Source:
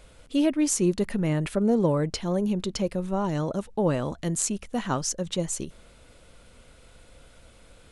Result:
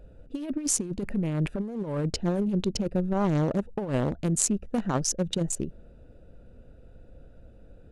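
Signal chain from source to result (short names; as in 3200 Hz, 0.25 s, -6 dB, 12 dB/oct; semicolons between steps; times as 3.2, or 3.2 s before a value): Wiener smoothing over 41 samples; negative-ratio compressor -27 dBFS, ratio -0.5; gain +1.5 dB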